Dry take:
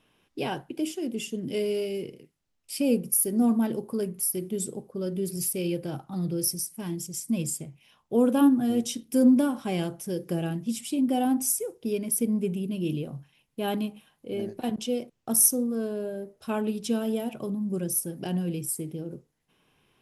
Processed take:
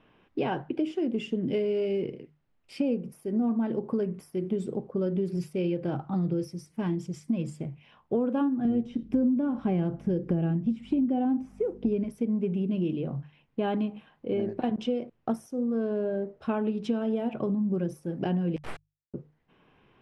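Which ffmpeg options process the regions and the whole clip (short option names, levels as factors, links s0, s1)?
-filter_complex "[0:a]asettb=1/sr,asplit=3[s0][s1][s2];[s0]atrim=end=8.654[s3];[s1]atrim=start=8.65:end=12.04,asetpts=PTS-STARTPTS,afade=t=in:d=0.004:c=qsin,afade=t=out:st=3.386:d=0.004:c=qsin,acrossover=split=2600[s4][s5];[s5]acompressor=threshold=0.00562:ratio=4:attack=1:release=60[s6];[s4][s6]amix=inputs=2:normalize=0,lowshelf=f=310:g=11.5,aeval=exprs='val(0)+0.00708*(sin(2*PI*50*n/s)+sin(2*PI*2*50*n/s)/2+sin(2*PI*3*50*n/s)/3+sin(2*PI*4*50*n/s)/4+sin(2*PI*5*50*n/s)/5)':c=same[s7];[s2]atrim=start=12.036[s8];[s3][s7]acrossfade=d=0.004:c1=hsin:c2=qsin[s9];[s9][s8]acrossfade=d=0.004:c1=qsin:c2=hsin,asettb=1/sr,asplit=3[s10][s11][s12];[s10]atrim=end=18.564[s13];[s11]atrim=start=18.56:end=19.14,asetpts=PTS-STARTPTS,afade=t=in:d=0.004:c=qsin,afade=t=out:st=0.576:d=0.004:c=qsin,highpass=f=2300:t=q:w=1.7,acrusher=bits=3:dc=4:mix=0:aa=0.000001[s14];[s12]atrim=start=19.136[s15];[s13][s14]acrossfade=d=0.004:c1=hsin:c2=qsin[s16];[s16][s15]acrossfade=d=0.004:c1=qsin:c2=hsin,acompressor=threshold=0.0282:ratio=6,lowpass=2100,bandreject=f=50:t=h:w=6,bandreject=f=100:t=h:w=6,bandreject=f=150:t=h:w=6,volume=2.11"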